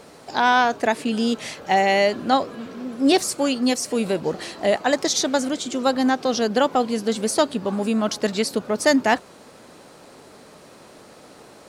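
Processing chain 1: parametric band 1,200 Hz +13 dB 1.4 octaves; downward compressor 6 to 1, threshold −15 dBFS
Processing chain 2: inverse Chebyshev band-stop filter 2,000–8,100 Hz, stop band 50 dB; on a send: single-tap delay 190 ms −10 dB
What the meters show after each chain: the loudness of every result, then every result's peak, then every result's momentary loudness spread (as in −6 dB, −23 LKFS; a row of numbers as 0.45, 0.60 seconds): −21.5, −22.5 LKFS; −3.5, −8.5 dBFS; 21, 6 LU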